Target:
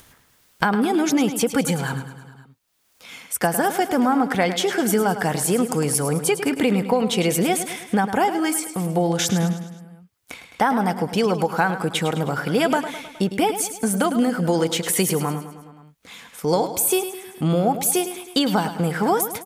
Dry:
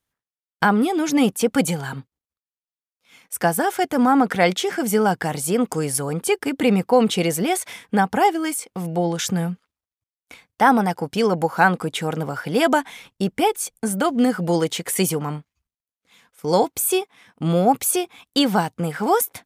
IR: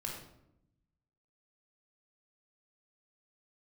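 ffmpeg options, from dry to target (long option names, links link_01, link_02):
-filter_complex "[0:a]acompressor=threshold=-19dB:ratio=6,asplit=2[link_01][link_02];[link_02]aecho=0:1:105|210|315|420|525:0.282|0.144|0.0733|0.0374|0.0191[link_03];[link_01][link_03]amix=inputs=2:normalize=0,acompressor=mode=upward:threshold=-34dB:ratio=2.5,volume=3dB"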